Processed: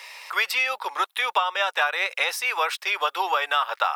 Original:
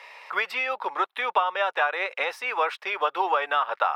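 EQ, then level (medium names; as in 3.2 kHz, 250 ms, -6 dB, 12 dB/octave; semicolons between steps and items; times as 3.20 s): tone controls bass -6 dB, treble +10 dB; tilt EQ +2.5 dB/octave; 0.0 dB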